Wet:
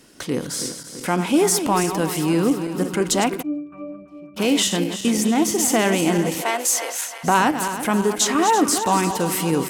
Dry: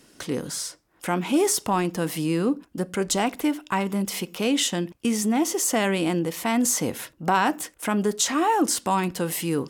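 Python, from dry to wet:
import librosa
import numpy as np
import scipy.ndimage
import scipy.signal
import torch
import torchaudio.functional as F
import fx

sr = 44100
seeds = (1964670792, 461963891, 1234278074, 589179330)

y = fx.reverse_delay_fb(x, sr, ms=167, feedback_pct=74, wet_db=-9.5)
y = fx.octave_resonator(y, sr, note='D', decay_s=0.46, at=(3.41, 4.36), fade=0.02)
y = fx.highpass(y, sr, hz=fx.line((6.4, 370.0), (7.23, 780.0)), slope=24, at=(6.4, 7.23), fade=0.02)
y = y * librosa.db_to_amplitude(3.5)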